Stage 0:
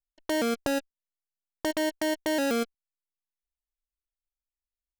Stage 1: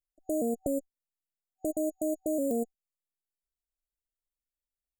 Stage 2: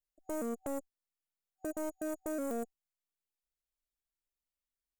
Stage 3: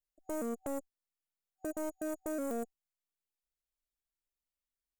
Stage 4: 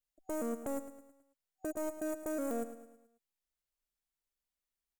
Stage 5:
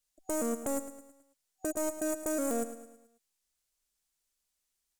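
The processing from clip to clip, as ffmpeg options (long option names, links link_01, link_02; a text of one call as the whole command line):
ffmpeg -i in.wav -af "afftfilt=real='re*(1-between(b*sr/4096,760,6800))':imag='im*(1-between(b*sr/4096,760,6800))':win_size=4096:overlap=0.75,volume=-2dB" out.wav
ffmpeg -i in.wav -af "aeval=exprs='(tanh(35.5*val(0)+0.3)-tanh(0.3))/35.5':channel_layout=same,volume=-2dB" out.wav
ffmpeg -i in.wav -af anull out.wav
ffmpeg -i in.wav -af "aecho=1:1:108|216|324|432|540:0.251|0.118|0.0555|0.0261|0.0123" out.wav
ffmpeg -i in.wav -af "equalizer=frequency=7500:width_type=o:width=1.9:gain=9,volume=4dB" out.wav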